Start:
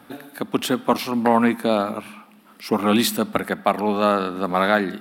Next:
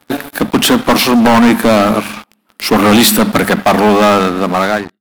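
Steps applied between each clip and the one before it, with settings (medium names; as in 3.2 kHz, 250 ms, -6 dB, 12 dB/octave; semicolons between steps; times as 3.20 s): fade out at the end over 1.13 s; hum notches 50/100/150/200 Hz; waveshaping leveller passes 5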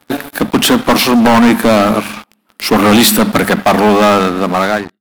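no audible change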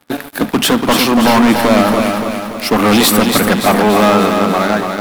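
bit-crushed delay 287 ms, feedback 55%, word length 6-bit, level -5 dB; trim -2.5 dB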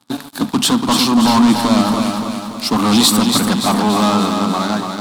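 graphic EQ 125/250/500/1000/2000/4000/8000 Hz +8/+9/-4/+10/-5/+11/+10 dB; trim -10.5 dB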